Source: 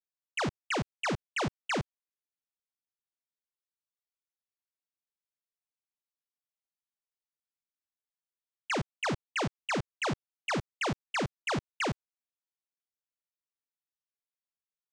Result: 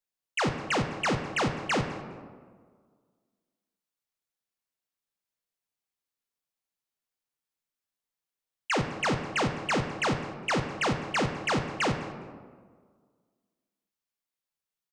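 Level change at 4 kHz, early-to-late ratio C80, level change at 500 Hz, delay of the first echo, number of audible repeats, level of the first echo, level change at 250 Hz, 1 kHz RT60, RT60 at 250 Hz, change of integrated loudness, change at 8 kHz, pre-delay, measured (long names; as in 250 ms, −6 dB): +4.0 dB, 9.0 dB, +5.0 dB, 204 ms, 1, −20.0 dB, +5.0 dB, 1.6 s, 1.9 s, +4.5 dB, +4.0 dB, 4 ms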